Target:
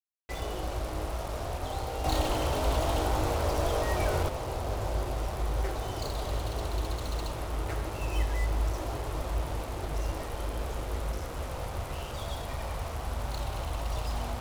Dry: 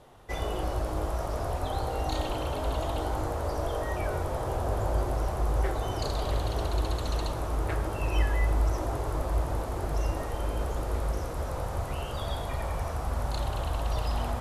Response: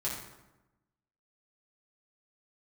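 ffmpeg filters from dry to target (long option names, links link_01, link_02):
-filter_complex "[0:a]bandreject=frequency=1700:width=14,acrusher=bits=5:mix=0:aa=0.5,asettb=1/sr,asplit=3[link_01][link_02][link_03];[link_01]atrim=end=2.044[link_04];[link_02]atrim=start=2.04:end=4.29,asetpts=PTS-STARTPTS,afade=type=in:duration=0.004:curve=qsin,afade=type=out:start_time=2.246:duration=0.004:curve=qsin,acontrast=47[link_05];[link_03]atrim=start=4.286[link_06];[link_04][link_05]acrossfade=duration=0.004:curve1=hsin:curve2=qsin[link_07];[link_07][link_06]acrossfade=duration=0.004:curve1=qsin:curve2=hsin,volume=-3.5dB"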